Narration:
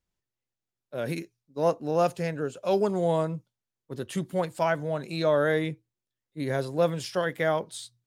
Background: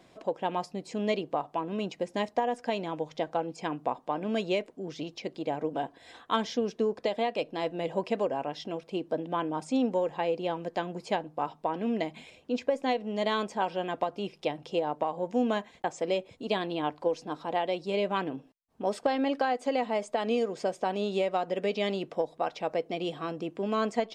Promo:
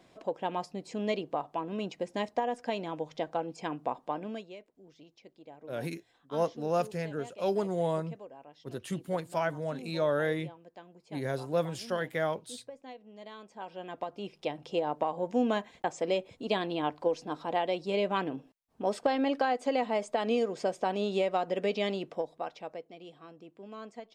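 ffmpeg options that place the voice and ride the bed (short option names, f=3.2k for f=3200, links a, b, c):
-filter_complex "[0:a]adelay=4750,volume=-5dB[a];[1:a]volume=15.5dB,afade=t=out:st=4.11:d=0.36:silence=0.158489,afade=t=in:st=13.44:d=1.5:silence=0.125893,afade=t=out:st=21.71:d=1.21:silence=0.16788[b];[a][b]amix=inputs=2:normalize=0"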